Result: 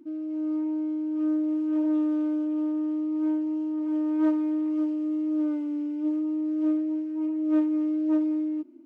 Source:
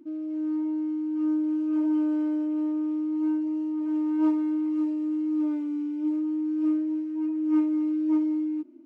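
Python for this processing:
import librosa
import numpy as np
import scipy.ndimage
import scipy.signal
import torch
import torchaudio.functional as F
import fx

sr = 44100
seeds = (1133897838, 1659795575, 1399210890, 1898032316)

y = fx.doppler_dist(x, sr, depth_ms=0.17)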